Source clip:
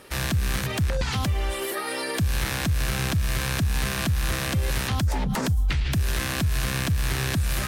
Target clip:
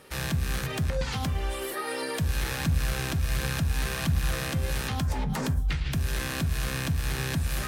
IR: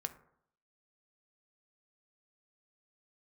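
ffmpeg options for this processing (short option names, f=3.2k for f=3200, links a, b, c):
-filter_complex "[1:a]atrim=start_sample=2205,atrim=end_sample=6615[a];[0:a][a]afir=irnorm=-1:irlink=0,asettb=1/sr,asplit=3[b][c][d];[b]atrim=end=2.024[e];[c]atrim=start=2.02:end=4.4,asetpts=PTS-STARTPTS,afade=t=in:d=0.004:c=qsin,afade=t=out:st=2.376:d=0.004:c=qsin,aphaser=in_gain=1:out_gain=1:delay=3.3:decay=0.27:speed=1.4:type=triangular[f];[d]atrim=start=4.396[g];[e][f]acrossfade=d=0.004:c1=hsin:c2=qsin[h];[h][g]acrossfade=d=0.004:c1=qsin:c2=hsin,volume=-3dB"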